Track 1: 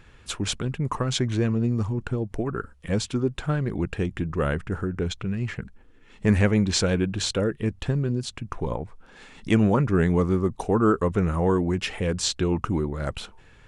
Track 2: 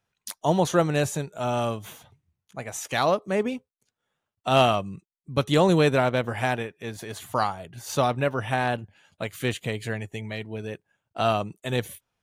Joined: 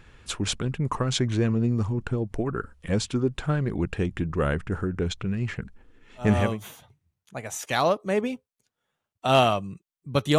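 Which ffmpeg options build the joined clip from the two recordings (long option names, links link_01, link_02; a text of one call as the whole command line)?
ffmpeg -i cue0.wav -i cue1.wav -filter_complex "[0:a]apad=whole_dur=10.38,atrim=end=10.38,atrim=end=6.6,asetpts=PTS-STARTPTS[link_01];[1:a]atrim=start=1.36:end=5.6,asetpts=PTS-STARTPTS[link_02];[link_01][link_02]acrossfade=duration=0.46:curve1=qsin:curve2=qsin" out.wav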